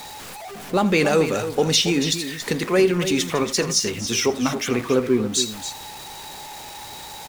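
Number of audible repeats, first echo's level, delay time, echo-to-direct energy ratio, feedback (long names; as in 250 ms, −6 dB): 2, −17.0 dB, 82 ms, −9.5 dB, repeats not evenly spaced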